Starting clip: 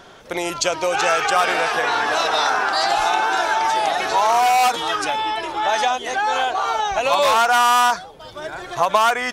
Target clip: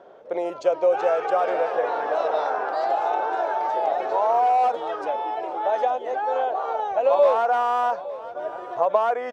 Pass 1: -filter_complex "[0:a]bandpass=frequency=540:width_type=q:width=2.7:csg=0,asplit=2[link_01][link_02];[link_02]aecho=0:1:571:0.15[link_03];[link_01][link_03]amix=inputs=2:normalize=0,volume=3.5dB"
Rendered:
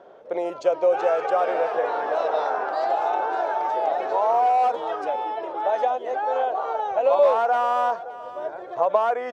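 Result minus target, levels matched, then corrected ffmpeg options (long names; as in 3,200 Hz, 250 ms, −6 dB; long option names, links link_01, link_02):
echo 292 ms early
-filter_complex "[0:a]bandpass=frequency=540:width_type=q:width=2.7:csg=0,asplit=2[link_01][link_02];[link_02]aecho=0:1:863:0.15[link_03];[link_01][link_03]amix=inputs=2:normalize=0,volume=3.5dB"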